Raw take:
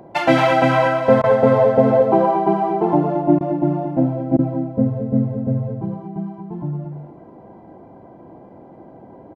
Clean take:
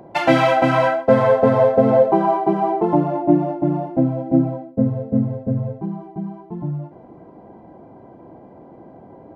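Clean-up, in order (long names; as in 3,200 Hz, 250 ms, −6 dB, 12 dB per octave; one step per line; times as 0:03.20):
repair the gap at 0:01.22/0:03.39/0:04.37, 16 ms
echo removal 224 ms −7.5 dB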